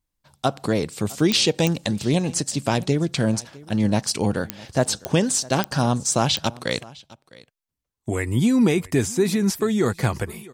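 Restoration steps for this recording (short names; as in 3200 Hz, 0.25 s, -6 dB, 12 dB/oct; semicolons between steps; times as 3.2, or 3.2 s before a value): de-click; inverse comb 0.657 s -22 dB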